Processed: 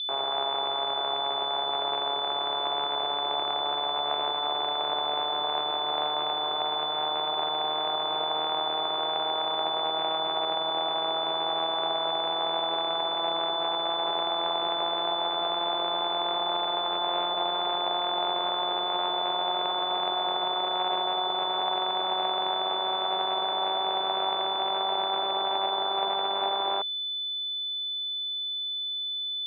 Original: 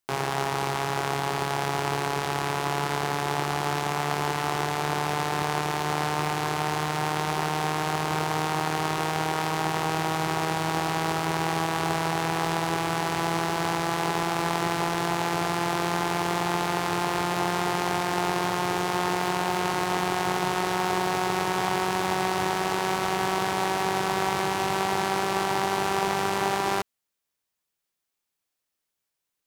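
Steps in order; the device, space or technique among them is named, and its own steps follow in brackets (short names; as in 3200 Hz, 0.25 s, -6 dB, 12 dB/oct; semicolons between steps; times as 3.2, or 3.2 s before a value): toy sound module (decimation joined by straight lines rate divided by 6×; pulse-width modulation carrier 3500 Hz; speaker cabinet 540–4000 Hz, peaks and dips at 640 Hz +7 dB, 1800 Hz -7 dB, 3800 Hz +7 dB); gain -1.5 dB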